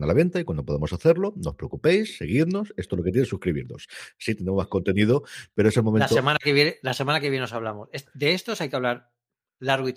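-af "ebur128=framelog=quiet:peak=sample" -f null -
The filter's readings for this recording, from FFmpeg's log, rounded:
Integrated loudness:
  I:         -23.9 LUFS
  Threshold: -34.3 LUFS
Loudness range:
  LRA:         3.7 LU
  Threshold: -44.0 LUFS
  LRA low:   -26.0 LUFS
  LRA high:  -22.3 LUFS
Sample peak:
  Peak:       -5.5 dBFS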